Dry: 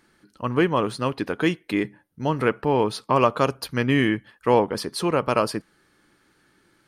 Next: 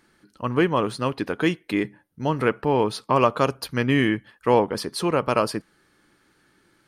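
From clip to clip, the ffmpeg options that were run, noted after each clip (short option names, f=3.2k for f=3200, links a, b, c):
-af anull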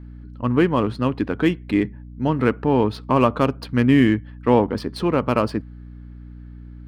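-af "adynamicsmooth=sensitivity=3:basefreq=3.5k,equalizer=f=100:t=o:w=0.67:g=9,equalizer=f=250:t=o:w=0.67:g=8,equalizer=f=6.3k:t=o:w=0.67:g=-5,aeval=exprs='val(0)+0.0141*(sin(2*PI*60*n/s)+sin(2*PI*2*60*n/s)/2+sin(2*PI*3*60*n/s)/3+sin(2*PI*4*60*n/s)/4+sin(2*PI*5*60*n/s)/5)':c=same"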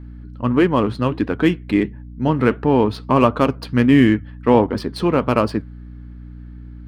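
-af "flanger=delay=2.2:depth=4.5:regen=-82:speed=1.5:shape=triangular,volume=7dB"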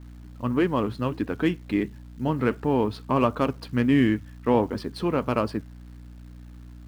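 -af "acrusher=bits=9:dc=4:mix=0:aa=0.000001,volume=-7.5dB"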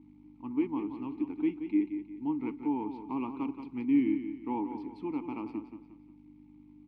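-filter_complex "[0:a]aeval=exprs='val(0)+0.0178*(sin(2*PI*50*n/s)+sin(2*PI*2*50*n/s)/2+sin(2*PI*3*50*n/s)/3+sin(2*PI*4*50*n/s)/4+sin(2*PI*5*50*n/s)/5)':c=same,asplit=3[a][b][c];[a]bandpass=f=300:t=q:w=8,volume=0dB[d];[b]bandpass=f=870:t=q:w=8,volume=-6dB[e];[c]bandpass=f=2.24k:t=q:w=8,volume=-9dB[f];[d][e][f]amix=inputs=3:normalize=0,asplit=2[g][h];[h]aecho=0:1:177|354|531|708:0.355|0.131|0.0486|0.018[i];[g][i]amix=inputs=2:normalize=0,volume=-1dB"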